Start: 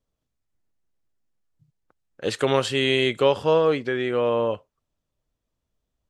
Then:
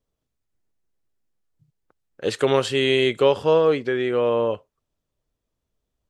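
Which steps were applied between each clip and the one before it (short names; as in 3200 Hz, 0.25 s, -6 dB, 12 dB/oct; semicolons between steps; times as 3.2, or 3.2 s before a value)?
bell 410 Hz +3.5 dB 0.55 oct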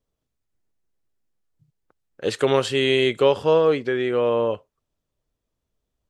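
nothing audible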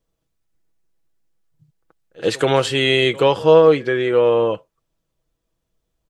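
comb 6.1 ms, depth 41%; pre-echo 79 ms -22 dB; gain +4 dB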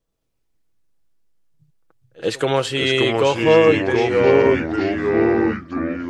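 echoes that change speed 0.118 s, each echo -3 st, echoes 3; gain -2.5 dB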